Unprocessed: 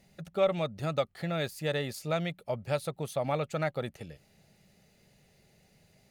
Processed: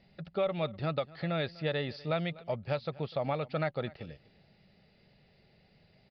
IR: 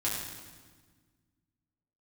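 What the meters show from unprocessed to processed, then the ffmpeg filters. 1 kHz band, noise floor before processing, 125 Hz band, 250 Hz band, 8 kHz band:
-1.5 dB, -66 dBFS, -0.5 dB, -0.5 dB, under -25 dB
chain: -filter_complex "[0:a]alimiter=limit=-21.5dB:level=0:latency=1:release=229,asplit=2[a][b];[b]aecho=0:1:247:0.0891[c];[a][c]amix=inputs=2:normalize=0,aresample=11025,aresample=44100"

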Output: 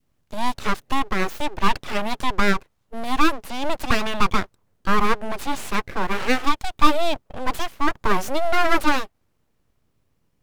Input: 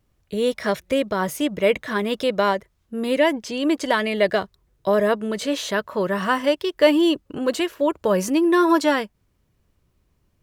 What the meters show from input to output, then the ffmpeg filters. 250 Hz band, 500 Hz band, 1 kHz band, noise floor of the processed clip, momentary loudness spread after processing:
-5.5 dB, -8.0 dB, +3.5 dB, -69 dBFS, 9 LU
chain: -af "adynamicequalizer=threshold=0.0282:dfrequency=760:dqfactor=0.89:tfrequency=760:tqfactor=0.89:attack=5:release=100:ratio=0.375:range=3.5:mode=boostabove:tftype=bell,aeval=exprs='abs(val(0))':c=same,volume=-1.5dB"

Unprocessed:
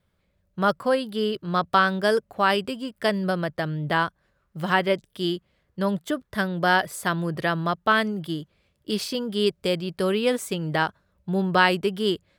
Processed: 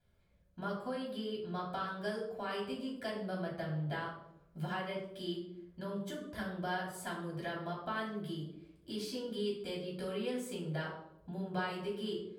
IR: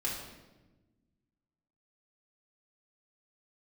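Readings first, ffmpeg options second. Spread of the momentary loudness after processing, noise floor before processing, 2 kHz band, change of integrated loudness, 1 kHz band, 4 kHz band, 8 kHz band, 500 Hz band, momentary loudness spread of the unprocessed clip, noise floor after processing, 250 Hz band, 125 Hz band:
6 LU, -71 dBFS, -18.0 dB, -15.0 dB, -17.0 dB, -15.5 dB, -14.0 dB, -14.5 dB, 9 LU, -66 dBFS, -13.0 dB, -12.0 dB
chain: -filter_complex "[0:a]acompressor=threshold=-39dB:ratio=2.5[a];[1:a]atrim=start_sample=2205,asetrate=83790,aresample=44100[b];[a][b]afir=irnorm=-1:irlink=0,volume=-2.5dB"

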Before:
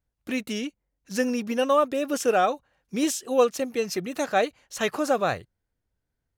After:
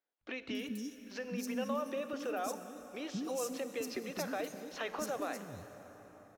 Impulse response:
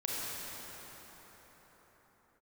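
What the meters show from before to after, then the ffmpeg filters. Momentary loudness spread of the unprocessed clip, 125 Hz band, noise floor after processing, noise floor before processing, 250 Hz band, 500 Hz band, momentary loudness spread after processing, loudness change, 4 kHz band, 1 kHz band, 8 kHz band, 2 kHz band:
10 LU, -9.0 dB, -60 dBFS, -81 dBFS, -11.5 dB, -14.5 dB, 10 LU, -13.5 dB, -11.5 dB, -15.5 dB, -11.5 dB, -12.0 dB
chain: -filter_complex "[0:a]equalizer=f=8.4k:w=1.4:g=-5.5,alimiter=limit=-20dB:level=0:latency=1:release=155,acompressor=threshold=-32dB:ratio=3,acrossover=split=320|4900[a][b][c];[a]adelay=210[d];[c]adelay=280[e];[d][b][e]amix=inputs=3:normalize=0,asplit=2[f][g];[1:a]atrim=start_sample=2205,highshelf=f=8.5k:g=7.5[h];[g][h]afir=irnorm=-1:irlink=0,volume=-14dB[i];[f][i]amix=inputs=2:normalize=0,volume=-4dB"

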